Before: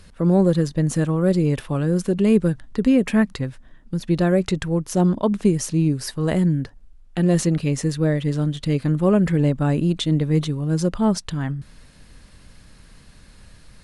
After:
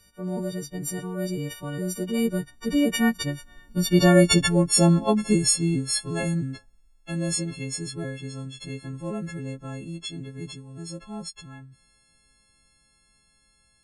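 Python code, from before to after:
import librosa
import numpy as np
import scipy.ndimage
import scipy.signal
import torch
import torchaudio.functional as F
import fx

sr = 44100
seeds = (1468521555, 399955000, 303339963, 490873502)

y = fx.freq_snap(x, sr, grid_st=4)
y = fx.doppler_pass(y, sr, speed_mps=15, closest_m=10.0, pass_at_s=4.25)
y = y * 10.0 ** (2.5 / 20.0)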